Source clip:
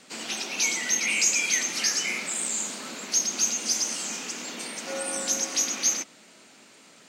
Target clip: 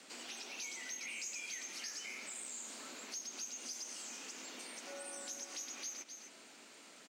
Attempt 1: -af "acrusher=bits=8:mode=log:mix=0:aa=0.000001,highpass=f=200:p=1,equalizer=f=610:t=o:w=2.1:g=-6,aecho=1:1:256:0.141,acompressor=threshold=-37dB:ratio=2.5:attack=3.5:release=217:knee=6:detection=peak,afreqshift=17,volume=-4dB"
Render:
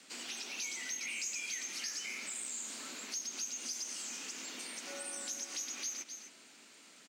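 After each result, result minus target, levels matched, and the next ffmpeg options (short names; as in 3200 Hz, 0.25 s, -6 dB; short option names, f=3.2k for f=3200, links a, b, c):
compressor: peak gain reduction -5 dB; 500 Hz band -4.5 dB
-af "acrusher=bits=8:mode=log:mix=0:aa=0.000001,highpass=f=200:p=1,equalizer=f=610:t=o:w=2.1:g=-6,aecho=1:1:256:0.141,acompressor=threshold=-45dB:ratio=2.5:attack=3.5:release=217:knee=6:detection=peak,afreqshift=17,volume=-4dB"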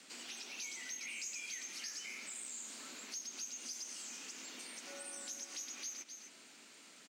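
500 Hz band -4.5 dB
-af "acrusher=bits=8:mode=log:mix=0:aa=0.000001,highpass=f=200:p=1,aecho=1:1:256:0.141,acompressor=threshold=-45dB:ratio=2.5:attack=3.5:release=217:knee=6:detection=peak,afreqshift=17,volume=-4dB"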